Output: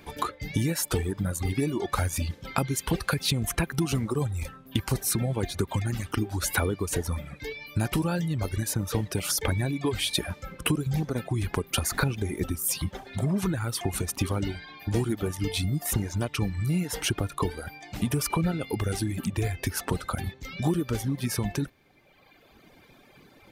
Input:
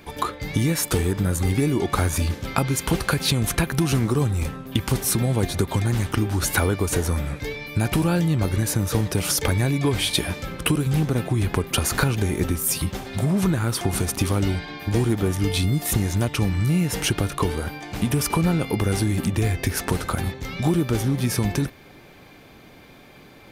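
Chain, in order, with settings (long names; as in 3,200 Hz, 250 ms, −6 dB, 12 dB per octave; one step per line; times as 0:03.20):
reverb reduction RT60 1.7 s
level −4 dB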